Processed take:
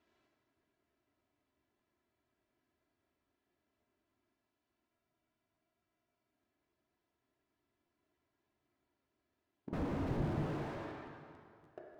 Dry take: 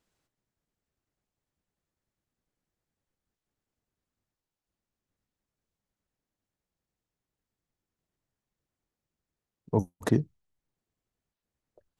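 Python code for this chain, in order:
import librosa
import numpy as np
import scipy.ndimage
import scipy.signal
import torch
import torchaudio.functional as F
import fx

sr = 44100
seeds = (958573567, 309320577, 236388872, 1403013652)

y = x + 0.73 * np.pad(x, (int(3.0 * sr / 1000.0), 0))[:len(x)]
y = fx.leveller(y, sr, passes=2)
y = 10.0 ** (-26.5 / 20.0) * (np.abs((y / 10.0 ** (-26.5 / 20.0) + 3.0) % 4.0 - 2.0) - 1.0)
y = fx.bandpass_edges(y, sr, low_hz=110.0, high_hz=3100.0)
y = fx.rev_plate(y, sr, seeds[0], rt60_s=2.3, hf_ratio=0.75, predelay_ms=0, drr_db=-0.5)
y = fx.spec_freeze(y, sr, seeds[1], at_s=4.91, hold_s=1.42)
y = fx.buffer_crackle(y, sr, first_s=0.32, period_s=0.29, block=512, kind='repeat')
y = fx.slew_limit(y, sr, full_power_hz=3.2)
y = y * 10.0 ** (6.0 / 20.0)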